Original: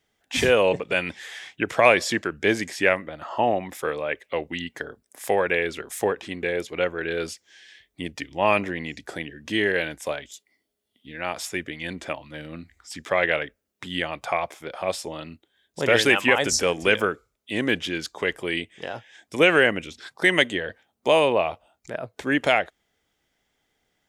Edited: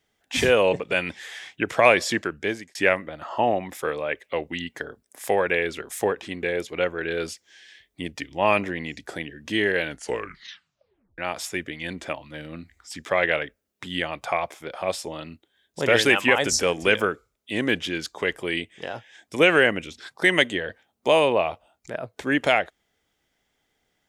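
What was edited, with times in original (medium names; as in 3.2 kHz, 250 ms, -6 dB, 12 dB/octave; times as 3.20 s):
2.25–2.75 s: fade out
9.86 s: tape stop 1.32 s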